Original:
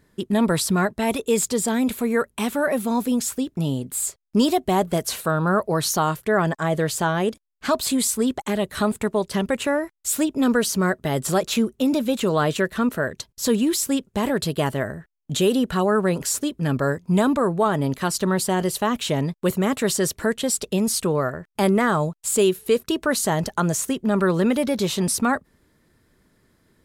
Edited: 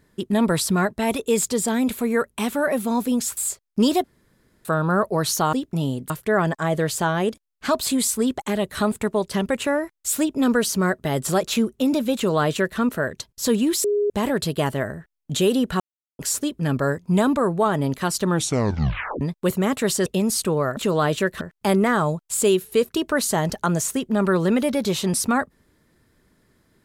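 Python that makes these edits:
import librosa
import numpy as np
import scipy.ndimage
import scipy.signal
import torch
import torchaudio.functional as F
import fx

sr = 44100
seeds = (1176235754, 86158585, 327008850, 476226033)

y = fx.edit(x, sr, fx.move(start_s=3.37, length_s=0.57, to_s=6.1),
    fx.room_tone_fill(start_s=4.61, length_s=0.61),
    fx.duplicate(start_s=12.15, length_s=0.64, to_s=21.35),
    fx.bleep(start_s=13.84, length_s=0.26, hz=412.0, db=-17.5),
    fx.silence(start_s=15.8, length_s=0.39),
    fx.tape_stop(start_s=18.26, length_s=0.95),
    fx.cut(start_s=20.06, length_s=0.58), tone=tone)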